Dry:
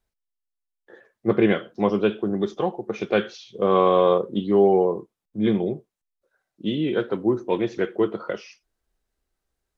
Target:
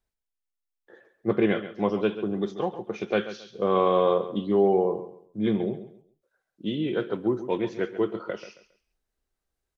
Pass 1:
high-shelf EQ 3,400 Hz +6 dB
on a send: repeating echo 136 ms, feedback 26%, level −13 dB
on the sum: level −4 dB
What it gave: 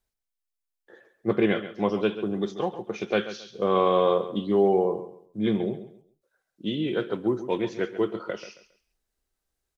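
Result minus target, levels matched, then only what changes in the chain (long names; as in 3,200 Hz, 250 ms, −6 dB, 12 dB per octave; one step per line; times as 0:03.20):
8,000 Hz band +4.5 dB
remove: high-shelf EQ 3,400 Hz +6 dB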